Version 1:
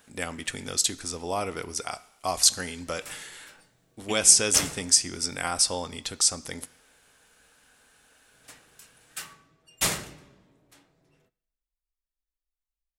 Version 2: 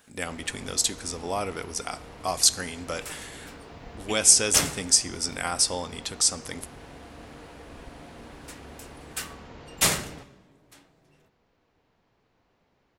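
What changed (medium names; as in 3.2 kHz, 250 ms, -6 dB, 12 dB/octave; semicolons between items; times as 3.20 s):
first sound: unmuted; second sound +3.5 dB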